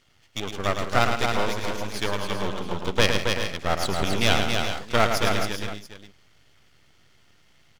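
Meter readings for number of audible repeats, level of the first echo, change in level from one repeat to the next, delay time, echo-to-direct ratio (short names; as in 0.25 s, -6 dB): 5, -6.5 dB, no steady repeat, 0.109 s, -1.5 dB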